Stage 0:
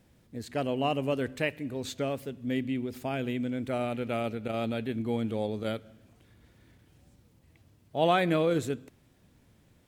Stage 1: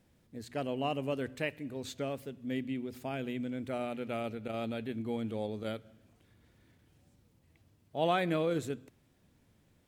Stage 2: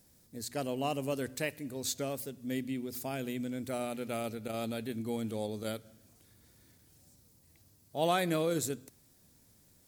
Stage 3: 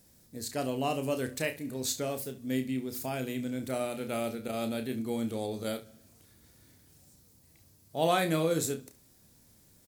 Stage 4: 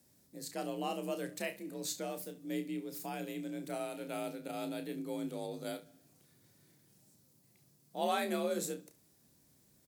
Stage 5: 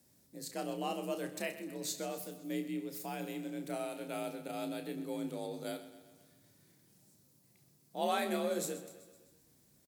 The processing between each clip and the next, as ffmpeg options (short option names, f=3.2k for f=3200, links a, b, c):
-af "bandreject=f=60:t=h:w=6,bandreject=f=120:t=h:w=6,volume=-5dB"
-af "aexciter=amount=5.6:drive=2.1:freq=4.2k"
-af "aecho=1:1:31|69:0.398|0.158,volume=2dB"
-af "afreqshift=46,volume=-6.5dB"
-af "aecho=1:1:128|256|384|512|640|768:0.2|0.114|0.0648|0.037|0.0211|0.012"